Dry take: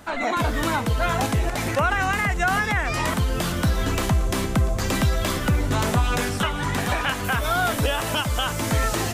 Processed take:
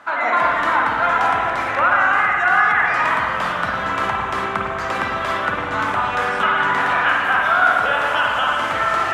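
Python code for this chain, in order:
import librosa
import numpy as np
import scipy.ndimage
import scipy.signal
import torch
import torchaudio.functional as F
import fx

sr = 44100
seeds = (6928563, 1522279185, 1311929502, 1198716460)

y = fx.rider(x, sr, range_db=10, speed_s=0.5)
y = fx.bandpass_q(y, sr, hz=1300.0, q=1.5)
y = fx.rev_spring(y, sr, rt60_s=2.1, pass_ms=(47, 51), chirp_ms=70, drr_db=-2.5)
y = y * librosa.db_to_amplitude(7.0)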